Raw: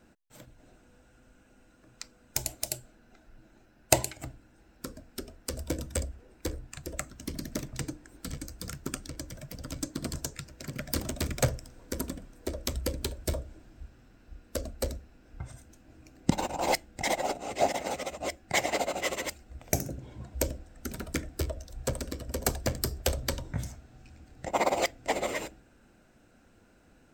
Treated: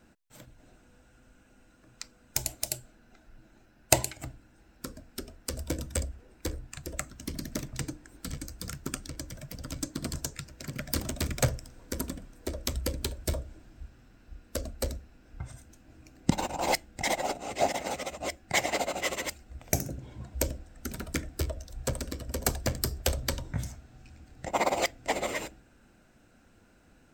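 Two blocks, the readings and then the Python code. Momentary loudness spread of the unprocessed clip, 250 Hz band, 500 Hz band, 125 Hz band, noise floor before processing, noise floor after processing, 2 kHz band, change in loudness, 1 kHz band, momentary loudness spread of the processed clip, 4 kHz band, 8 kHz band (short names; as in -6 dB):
15 LU, 0.0 dB, -1.0 dB, +1.0 dB, -61 dBFS, -61 dBFS, +1.0 dB, +0.5 dB, 0.0 dB, 15 LU, +1.0 dB, +1.0 dB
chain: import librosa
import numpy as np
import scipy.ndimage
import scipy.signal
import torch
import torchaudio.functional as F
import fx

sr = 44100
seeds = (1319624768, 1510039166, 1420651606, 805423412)

y = fx.peak_eq(x, sr, hz=460.0, db=-2.5, octaves=1.6)
y = y * 10.0 ** (1.0 / 20.0)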